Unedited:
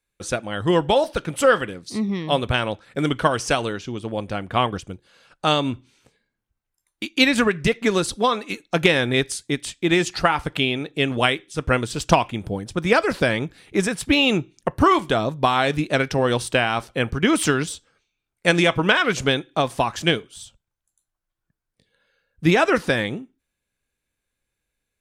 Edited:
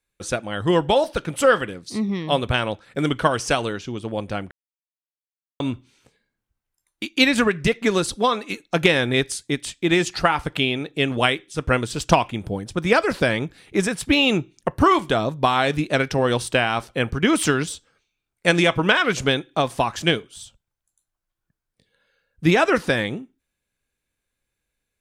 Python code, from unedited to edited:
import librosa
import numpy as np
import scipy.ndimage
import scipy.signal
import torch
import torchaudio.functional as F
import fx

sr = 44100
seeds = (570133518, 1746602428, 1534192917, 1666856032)

y = fx.edit(x, sr, fx.silence(start_s=4.51, length_s=1.09), tone=tone)